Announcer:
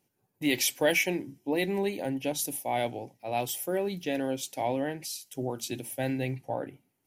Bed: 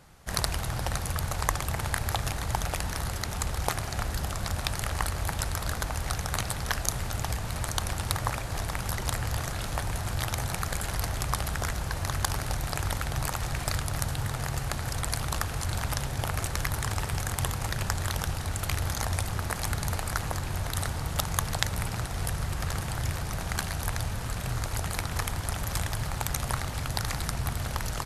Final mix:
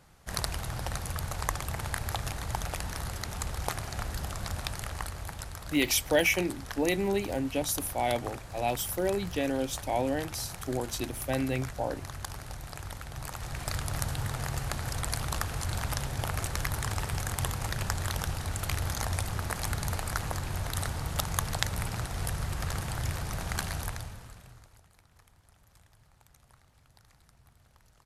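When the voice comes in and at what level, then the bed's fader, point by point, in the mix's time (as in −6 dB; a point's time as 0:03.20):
5.30 s, +0.5 dB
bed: 0:04.55 −4 dB
0:05.54 −10.5 dB
0:13.09 −10.5 dB
0:13.90 −2 dB
0:23.77 −2 dB
0:24.89 −30.5 dB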